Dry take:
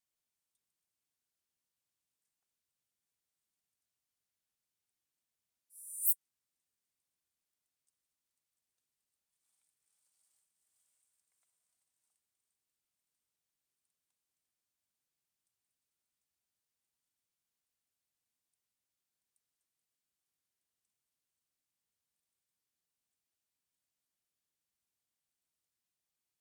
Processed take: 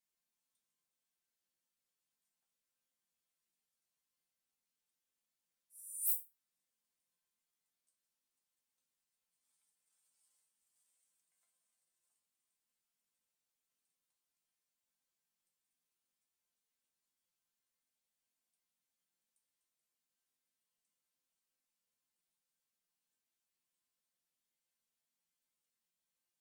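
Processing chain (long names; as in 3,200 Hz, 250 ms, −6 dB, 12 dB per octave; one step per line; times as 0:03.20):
resonators tuned to a chord F3 major, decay 0.24 s
harmonic generator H 5 −15 dB, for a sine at −29.5 dBFS
level +8 dB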